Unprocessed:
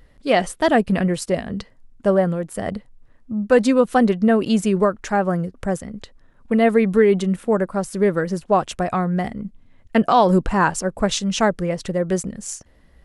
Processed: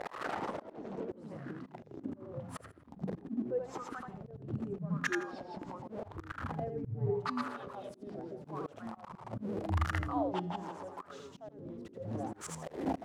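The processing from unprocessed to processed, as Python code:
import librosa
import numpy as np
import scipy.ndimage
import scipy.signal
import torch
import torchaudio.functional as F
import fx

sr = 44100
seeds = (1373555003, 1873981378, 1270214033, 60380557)

y = x + 0.5 * 10.0 ** (-23.0 / 20.0) * np.sign(x)
y = scipy.signal.sosfilt(scipy.signal.butter(2, 48.0, 'highpass', fs=sr, output='sos'), y)
y = fx.gate_flip(y, sr, shuts_db=-17.0, range_db=-27)
y = fx.low_shelf(y, sr, hz=130.0, db=-5.0)
y = fx.echo_feedback(y, sr, ms=82, feedback_pct=23, wet_db=-4.0)
y = fx.wah_lfo(y, sr, hz=0.83, low_hz=270.0, high_hz=1400.0, q=4.5)
y = fx.hum_notches(y, sr, base_hz=60, count=7)
y = fx.comb_fb(y, sr, f0_hz=410.0, decay_s=0.72, harmonics='all', damping=0.0, mix_pct=50)
y = fx.echo_pitch(y, sr, ms=130, semitones=-6, count=3, db_per_echo=-3.0)
y = fx.auto_swell(y, sr, attack_ms=210.0)
y = fx.high_shelf(y, sr, hz=4200.0, db=fx.steps((0.0, 4.5), (7.67, 11.0)))
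y = F.gain(torch.from_numpy(y), 14.5).numpy()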